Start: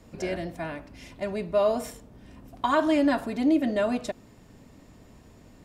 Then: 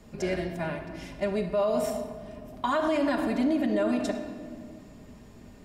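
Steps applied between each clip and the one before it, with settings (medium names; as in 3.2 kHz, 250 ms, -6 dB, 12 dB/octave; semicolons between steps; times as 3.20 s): simulated room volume 3100 m³, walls mixed, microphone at 1.3 m; peak limiter -18 dBFS, peak gain reduction 8 dB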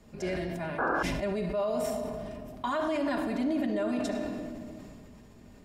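painted sound noise, 0.78–1.03 s, 230–1700 Hz -24 dBFS; decay stretcher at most 20 dB/s; trim -4.5 dB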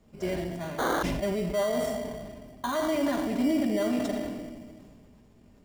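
in parallel at -3 dB: sample-rate reducer 2.6 kHz, jitter 0%; on the sum: upward expansion 1.5:1, over -40 dBFS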